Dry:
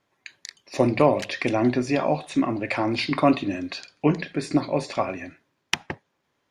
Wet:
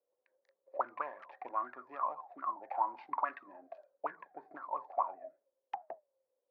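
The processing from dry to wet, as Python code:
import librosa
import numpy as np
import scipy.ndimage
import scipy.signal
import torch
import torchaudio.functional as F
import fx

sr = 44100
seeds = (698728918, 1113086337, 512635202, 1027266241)

y = fx.wiener(x, sr, points=15)
y = fx.auto_wah(y, sr, base_hz=510.0, top_hz=1700.0, q=20.0, full_db=-15.0, direction='up')
y = fx.bandpass_q(y, sr, hz=960.0, q=0.51)
y = F.gain(torch.from_numpy(y), 7.5).numpy()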